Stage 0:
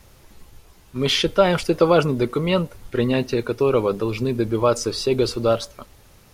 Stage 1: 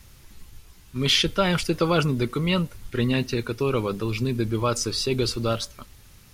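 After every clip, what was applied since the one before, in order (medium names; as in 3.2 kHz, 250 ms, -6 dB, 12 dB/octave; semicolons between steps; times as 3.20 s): peaking EQ 590 Hz -10.5 dB 1.9 oct; trim +1.5 dB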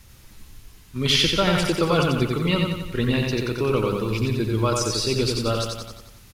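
feedback delay 90 ms, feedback 54%, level -3.5 dB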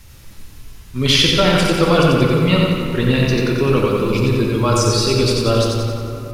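reverberation RT60 3.0 s, pre-delay 7 ms, DRR 2 dB; trim +4.5 dB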